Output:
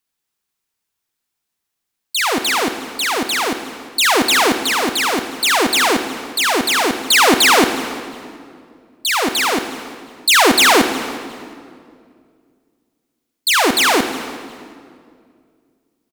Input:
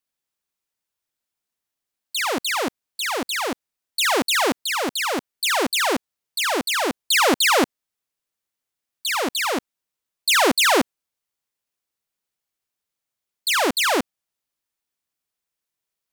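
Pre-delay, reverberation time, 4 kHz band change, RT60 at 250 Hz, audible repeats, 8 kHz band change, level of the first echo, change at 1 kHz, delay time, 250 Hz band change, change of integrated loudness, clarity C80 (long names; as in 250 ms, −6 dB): 36 ms, 2.2 s, +6.5 dB, 2.7 s, 1, +6.5 dB, −22.0 dB, +6.5 dB, 359 ms, +6.5 dB, +6.0 dB, 9.5 dB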